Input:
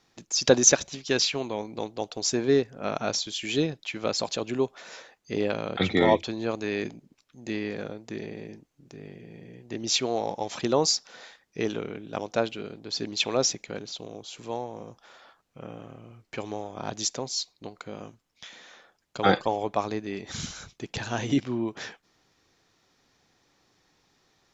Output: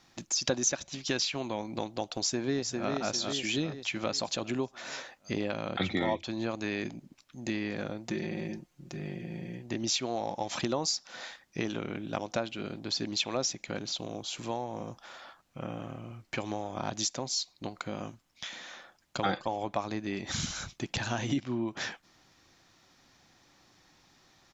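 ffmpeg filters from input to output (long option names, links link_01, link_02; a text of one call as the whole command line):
ffmpeg -i in.wav -filter_complex "[0:a]asplit=2[link_01][link_02];[link_02]afade=type=in:start_time=2.17:duration=0.01,afade=type=out:start_time=2.92:duration=0.01,aecho=0:1:400|800|1200|1600|2000|2400:0.501187|0.250594|0.125297|0.0626484|0.0313242|0.0156621[link_03];[link_01][link_03]amix=inputs=2:normalize=0,asettb=1/sr,asplit=3[link_04][link_05][link_06];[link_04]atrim=end=8.084[link_07];[link_05]atrim=start=8.08:end=9.58,asetpts=PTS-STARTPTS,afade=type=in:duration=0.004:curve=qsin,afade=type=out:start_time=1.496:duration=0.004:curve=qsin,aecho=1:1:5.6:0.65,atrim=end_sample=66150[link_08];[link_06]atrim=start=9.576[link_09];[link_07][link_08]acrossfade=duration=0.004:curve1=hsin:curve2=qsin[link_10];[link_10][link_09]acrossfade=duration=0.004:curve1=qsin:curve2=hsin,equalizer=frequency=440:width_type=o:width=0.24:gain=-10.5,acompressor=threshold=-35dB:ratio=3,volume=4.5dB" out.wav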